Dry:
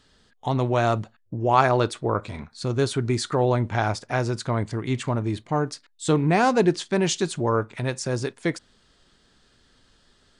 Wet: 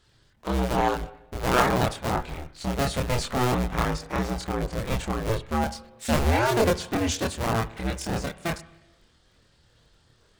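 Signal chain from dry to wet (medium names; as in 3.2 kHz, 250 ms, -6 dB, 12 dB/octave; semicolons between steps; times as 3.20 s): cycle switcher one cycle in 2, inverted; spring tank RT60 1 s, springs 44/60 ms, chirp 80 ms, DRR 15.5 dB; chorus voices 6, 0.39 Hz, delay 26 ms, depth 1.3 ms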